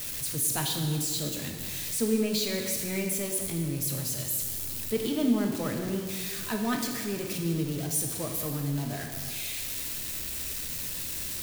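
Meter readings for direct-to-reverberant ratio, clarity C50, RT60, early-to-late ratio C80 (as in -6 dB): 2.0 dB, 4.5 dB, 1.6 s, 6.0 dB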